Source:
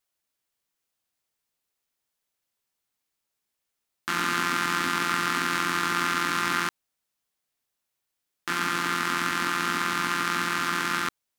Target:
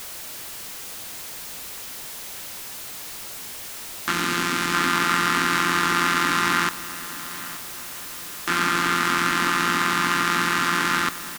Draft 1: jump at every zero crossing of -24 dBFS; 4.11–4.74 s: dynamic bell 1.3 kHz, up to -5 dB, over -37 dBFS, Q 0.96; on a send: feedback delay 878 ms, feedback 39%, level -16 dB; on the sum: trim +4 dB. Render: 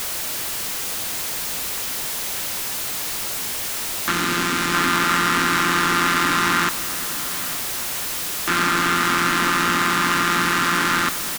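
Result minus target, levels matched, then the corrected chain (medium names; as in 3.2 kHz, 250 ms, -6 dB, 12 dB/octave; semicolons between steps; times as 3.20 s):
jump at every zero crossing: distortion +8 dB
jump at every zero crossing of -33.5 dBFS; 4.11–4.74 s: dynamic bell 1.3 kHz, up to -5 dB, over -37 dBFS, Q 0.96; on a send: feedback delay 878 ms, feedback 39%, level -16 dB; on the sum: trim +4 dB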